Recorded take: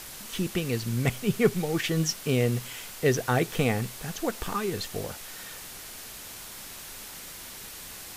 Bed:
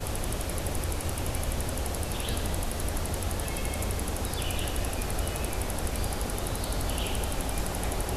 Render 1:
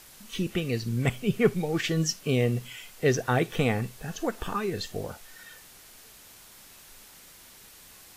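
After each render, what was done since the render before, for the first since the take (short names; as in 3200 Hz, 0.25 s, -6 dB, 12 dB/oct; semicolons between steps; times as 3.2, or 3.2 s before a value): noise print and reduce 9 dB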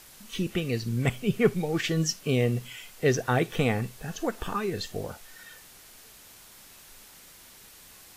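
nothing audible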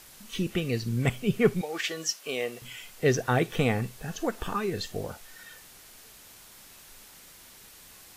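1.61–2.62 HPF 550 Hz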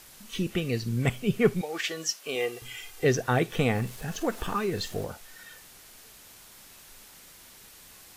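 2.35–3.05 comb 2.5 ms, depth 69%; 3.75–5.05 G.711 law mismatch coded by mu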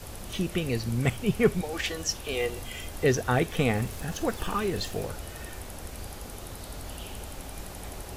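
add bed -9.5 dB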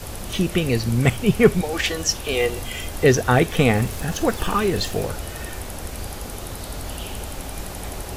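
gain +8 dB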